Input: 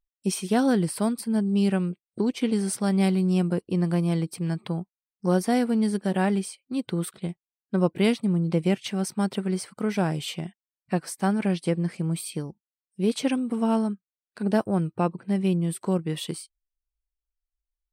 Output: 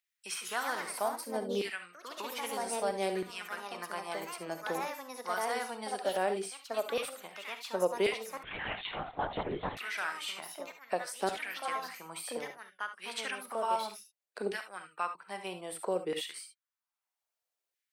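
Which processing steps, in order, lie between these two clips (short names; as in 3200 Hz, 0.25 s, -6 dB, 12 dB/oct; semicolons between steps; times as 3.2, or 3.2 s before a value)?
LFO high-pass saw down 0.62 Hz 420–2100 Hz; echoes that change speed 0.195 s, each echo +3 st, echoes 2, each echo -6 dB; on a send at -8 dB: reverb, pre-delay 3 ms; 8.43–9.77 on the sum: LPC vocoder at 8 kHz whisper; three-band squash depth 40%; gain -6.5 dB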